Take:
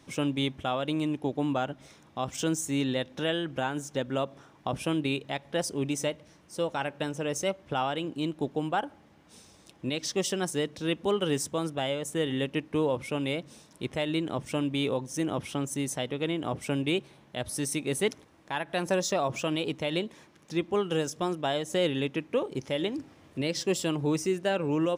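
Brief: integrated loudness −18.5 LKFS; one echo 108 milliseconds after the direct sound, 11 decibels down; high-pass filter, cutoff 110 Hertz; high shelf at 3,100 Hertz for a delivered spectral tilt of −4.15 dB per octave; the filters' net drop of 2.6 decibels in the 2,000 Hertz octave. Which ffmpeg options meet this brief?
ffmpeg -i in.wav -af "highpass=110,equalizer=frequency=2000:width_type=o:gain=-5,highshelf=frequency=3100:gain=3.5,aecho=1:1:108:0.282,volume=12dB" out.wav

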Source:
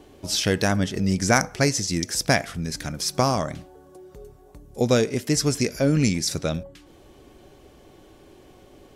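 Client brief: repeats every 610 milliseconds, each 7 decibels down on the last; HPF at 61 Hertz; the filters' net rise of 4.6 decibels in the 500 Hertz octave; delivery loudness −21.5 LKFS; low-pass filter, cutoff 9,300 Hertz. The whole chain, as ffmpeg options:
ffmpeg -i in.wav -af "highpass=61,lowpass=9300,equalizer=frequency=500:width_type=o:gain=5.5,aecho=1:1:610|1220|1830|2440|3050:0.447|0.201|0.0905|0.0407|0.0183" out.wav

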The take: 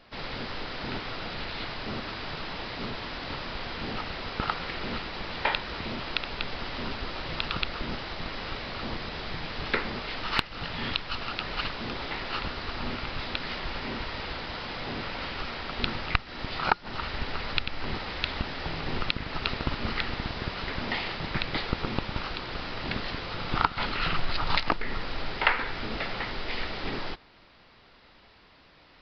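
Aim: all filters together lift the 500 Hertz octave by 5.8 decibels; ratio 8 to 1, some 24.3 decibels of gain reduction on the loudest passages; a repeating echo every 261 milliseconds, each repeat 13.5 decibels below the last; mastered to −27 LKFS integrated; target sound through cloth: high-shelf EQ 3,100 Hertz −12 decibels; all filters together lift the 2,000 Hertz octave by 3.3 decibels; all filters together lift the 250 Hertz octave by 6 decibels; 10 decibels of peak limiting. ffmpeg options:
ffmpeg -i in.wav -af "equalizer=frequency=250:width_type=o:gain=6,equalizer=frequency=500:width_type=o:gain=5.5,equalizer=frequency=2000:width_type=o:gain=8,acompressor=threshold=-40dB:ratio=8,alimiter=level_in=7.5dB:limit=-24dB:level=0:latency=1,volume=-7.5dB,highshelf=frequency=3100:gain=-12,aecho=1:1:261|522:0.211|0.0444,volume=18.5dB" out.wav

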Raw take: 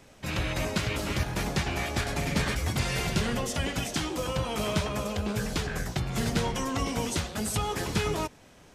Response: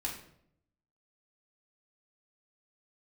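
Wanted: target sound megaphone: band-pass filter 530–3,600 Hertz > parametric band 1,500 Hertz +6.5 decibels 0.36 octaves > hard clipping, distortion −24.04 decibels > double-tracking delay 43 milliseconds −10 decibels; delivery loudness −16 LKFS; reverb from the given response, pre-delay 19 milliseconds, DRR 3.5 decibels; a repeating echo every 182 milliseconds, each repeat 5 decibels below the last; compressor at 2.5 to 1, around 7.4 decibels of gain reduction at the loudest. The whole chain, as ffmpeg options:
-filter_complex "[0:a]acompressor=threshold=-34dB:ratio=2.5,aecho=1:1:182|364|546|728|910|1092|1274:0.562|0.315|0.176|0.0988|0.0553|0.031|0.0173,asplit=2[link_01][link_02];[1:a]atrim=start_sample=2205,adelay=19[link_03];[link_02][link_03]afir=irnorm=-1:irlink=0,volume=-5.5dB[link_04];[link_01][link_04]amix=inputs=2:normalize=0,highpass=530,lowpass=3600,equalizer=frequency=1500:width_type=o:width=0.36:gain=6.5,asoftclip=type=hard:threshold=-28.5dB,asplit=2[link_05][link_06];[link_06]adelay=43,volume=-10dB[link_07];[link_05][link_07]amix=inputs=2:normalize=0,volume=19dB"

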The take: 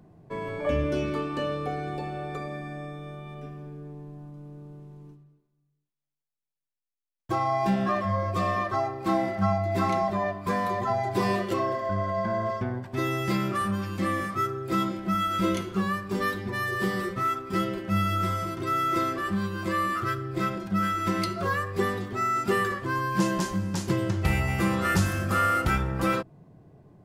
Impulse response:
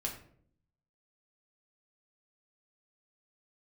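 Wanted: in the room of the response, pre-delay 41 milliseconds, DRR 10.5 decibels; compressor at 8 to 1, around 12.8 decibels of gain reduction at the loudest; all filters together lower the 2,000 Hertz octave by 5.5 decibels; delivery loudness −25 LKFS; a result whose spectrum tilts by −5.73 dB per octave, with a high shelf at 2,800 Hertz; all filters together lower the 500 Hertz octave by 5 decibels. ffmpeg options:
-filter_complex "[0:a]equalizer=frequency=500:width_type=o:gain=-7,equalizer=frequency=2000:width_type=o:gain=-8,highshelf=frequency=2800:gain=4.5,acompressor=threshold=-34dB:ratio=8,asplit=2[link_01][link_02];[1:a]atrim=start_sample=2205,adelay=41[link_03];[link_02][link_03]afir=irnorm=-1:irlink=0,volume=-12dB[link_04];[link_01][link_04]amix=inputs=2:normalize=0,volume=12.5dB"

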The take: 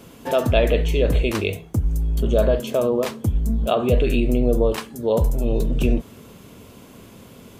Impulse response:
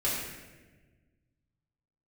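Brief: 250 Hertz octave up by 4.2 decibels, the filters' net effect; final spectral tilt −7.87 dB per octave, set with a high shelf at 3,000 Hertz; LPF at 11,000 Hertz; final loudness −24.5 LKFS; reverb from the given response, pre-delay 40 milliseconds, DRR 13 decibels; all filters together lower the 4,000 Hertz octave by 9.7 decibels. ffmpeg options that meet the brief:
-filter_complex "[0:a]lowpass=11000,equalizer=frequency=250:width_type=o:gain=5,highshelf=frequency=3000:gain=-7,equalizer=frequency=4000:width_type=o:gain=-8.5,asplit=2[link_01][link_02];[1:a]atrim=start_sample=2205,adelay=40[link_03];[link_02][link_03]afir=irnorm=-1:irlink=0,volume=-21.5dB[link_04];[link_01][link_04]amix=inputs=2:normalize=0,volume=-5dB"

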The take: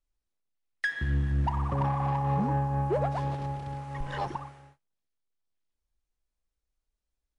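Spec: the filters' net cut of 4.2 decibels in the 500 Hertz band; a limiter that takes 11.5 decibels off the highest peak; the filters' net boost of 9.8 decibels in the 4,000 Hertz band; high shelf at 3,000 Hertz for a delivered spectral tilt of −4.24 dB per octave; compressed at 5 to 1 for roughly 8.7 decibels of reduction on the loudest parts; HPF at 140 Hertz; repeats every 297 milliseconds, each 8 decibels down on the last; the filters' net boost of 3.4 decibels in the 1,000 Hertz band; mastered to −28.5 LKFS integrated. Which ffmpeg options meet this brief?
ffmpeg -i in.wav -af "highpass=140,equalizer=frequency=500:width_type=o:gain=-7,equalizer=frequency=1000:width_type=o:gain=5.5,highshelf=frequency=3000:gain=7,equalizer=frequency=4000:width_type=o:gain=7.5,acompressor=threshold=-31dB:ratio=5,alimiter=level_in=3.5dB:limit=-24dB:level=0:latency=1,volume=-3.5dB,aecho=1:1:297|594|891|1188|1485:0.398|0.159|0.0637|0.0255|0.0102,volume=8.5dB" out.wav

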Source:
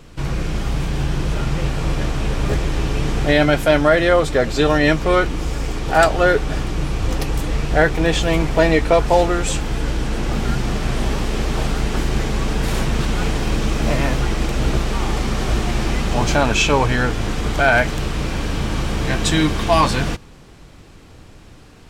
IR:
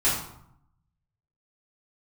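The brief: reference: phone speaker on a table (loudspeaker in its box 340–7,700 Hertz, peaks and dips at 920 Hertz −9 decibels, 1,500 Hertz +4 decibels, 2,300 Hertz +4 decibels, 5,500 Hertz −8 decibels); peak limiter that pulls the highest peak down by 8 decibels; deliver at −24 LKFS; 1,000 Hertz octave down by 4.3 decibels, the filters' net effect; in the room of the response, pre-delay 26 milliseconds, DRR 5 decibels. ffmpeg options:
-filter_complex "[0:a]equalizer=frequency=1000:width_type=o:gain=-4,alimiter=limit=-10dB:level=0:latency=1,asplit=2[link_01][link_02];[1:a]atrim=start_sample=2205,adelay=26[link_03];[link_02][link_03]afir=irnorm=-1:irlink=0,volume=-18dB[link_04];[link_01][link_04]amix=inputs=2:normalize=0,highpass=frequency=340:width=0.5412,highpass=frequency=340:width=1.3066,equalizer=frequency=920:width_type=q:width=4:gain=-9,equalizer=frequency=1500:width_type=q:width=4:gain=4,equalizer=frequency=2300:width_type=q:width=4:gain=4,equalizer=frequency=5500:width_type=q:width=4:gain=-8,lowpass=frequency=7700:width=0.5412,lowpass=frequency=7700:width=1.3066"

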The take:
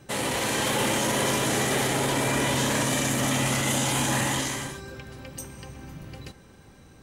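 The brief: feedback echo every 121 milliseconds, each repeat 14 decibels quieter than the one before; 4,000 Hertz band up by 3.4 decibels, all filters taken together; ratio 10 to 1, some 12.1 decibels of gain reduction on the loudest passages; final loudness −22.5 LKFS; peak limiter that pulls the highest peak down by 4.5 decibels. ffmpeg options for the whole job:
ffmpeg -i in.wav -af "equalizer=frequency=4000:width_type=o:gain=4.5,acompressor=threshold=-33dB:ratio=10,alimiter=level_in=4dB:limit=-24dB:level=0:latency=1,volume=-4dB,aecho=1:1:121|242:0.2|0.0399,volume=14.5dB" out.wav

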